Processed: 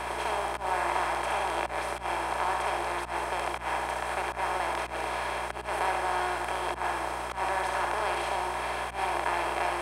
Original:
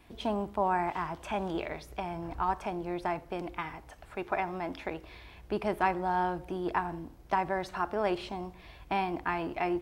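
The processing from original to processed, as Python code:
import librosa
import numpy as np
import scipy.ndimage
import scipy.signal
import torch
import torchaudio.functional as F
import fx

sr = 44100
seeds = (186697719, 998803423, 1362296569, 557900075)

y = fx.bin_compress(x, sr, power=0.2)
y = scipy.signal.sosfilt(scipy.signal.bessel(8, 590.0, 'highpass', norm='mag', fs=sr, output='sos'), y)
y = fx.peak_eq(y, sr, hz=9000.0, db=13.0, octaves=0.52)
y = fx.room_early_taps(y, sr, ms=(38, 69), db=(-12.5, -4.5))
y = fx.auto_swell(y, sr, attack_ms=115.0)
y = fx.add_hum(y, sr, base_hz=60, snr_db=16)
y = F.gain(torch.from_numpy(y), -6.0).numpy()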